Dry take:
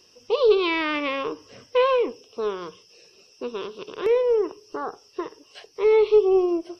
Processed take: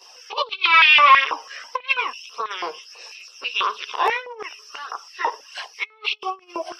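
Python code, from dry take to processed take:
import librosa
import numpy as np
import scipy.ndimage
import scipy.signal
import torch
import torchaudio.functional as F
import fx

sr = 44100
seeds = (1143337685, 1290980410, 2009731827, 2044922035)

y = fx.chorus_voices(x, sr, voices=2, hz=0.81, base_ms=15, depth_ms=1.2, mix_pct=70)
y = fx.over_compress(y, sr, threshold_db=-27.0, ratio=-0.5)
y = fx.filter_held_highpass(y, sr, hz=6.1, low_hz=800.0, high_hz=2700.0)
y = y * 10.0 ** (7.5 / 20.0)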